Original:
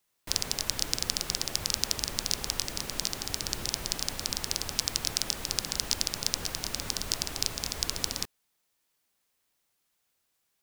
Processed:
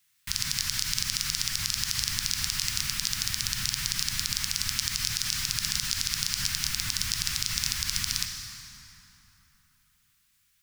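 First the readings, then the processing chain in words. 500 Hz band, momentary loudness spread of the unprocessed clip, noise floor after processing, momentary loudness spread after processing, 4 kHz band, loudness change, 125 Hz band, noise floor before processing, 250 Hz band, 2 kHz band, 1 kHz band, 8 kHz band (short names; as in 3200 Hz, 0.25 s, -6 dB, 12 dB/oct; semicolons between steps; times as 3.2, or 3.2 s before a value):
under -20 dB, 4 LU, -69 dBFS, 2 LU, +3.0 dB, +3.0 dB, +4.0 dB, -77 dBFS, -3.0 dB, +6.0 dB, -2.0 dB, +3.0 dB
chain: Chebyshev band-stop 140–1700 Hz, order 2; plate-style reverb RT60 3.5 s, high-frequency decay 0.6×, DRR 7 dB; limiter -14.5 dBFS, peak gain reduction 11 dB; low shelf 110 Hz -6 dB; gain +8.5 dB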